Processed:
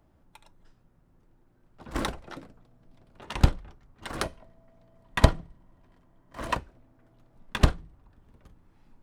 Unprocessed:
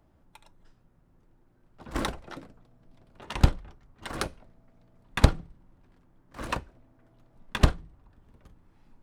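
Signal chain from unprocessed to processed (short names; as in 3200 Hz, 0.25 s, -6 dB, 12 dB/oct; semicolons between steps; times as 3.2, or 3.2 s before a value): 4.21–6.55 small resonant body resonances 660/1000/1900/3100 Hz, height 9 dB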